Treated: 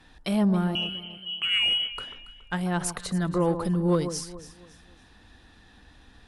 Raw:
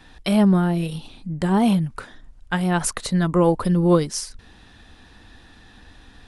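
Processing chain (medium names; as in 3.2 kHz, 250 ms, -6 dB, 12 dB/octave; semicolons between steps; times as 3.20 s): 0.75–1.92 s: frequency inversion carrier 3.1 kHz; echo whose repeats swap between lows and highs 140 ms, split 1.3 kHz, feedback 56%, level -10.5 dB; Chebyshev shaper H 5 -29 dB, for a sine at -5.5 dBFS; trim -7.5 dB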